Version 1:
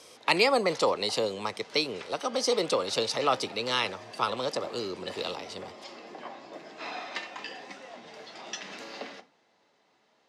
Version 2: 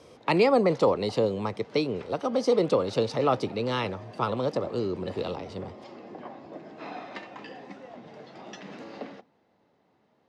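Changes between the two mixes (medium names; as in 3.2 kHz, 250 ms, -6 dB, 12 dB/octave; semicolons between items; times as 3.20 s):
background: send -11.0 dB; master: add tilt EQ -4 dB/octave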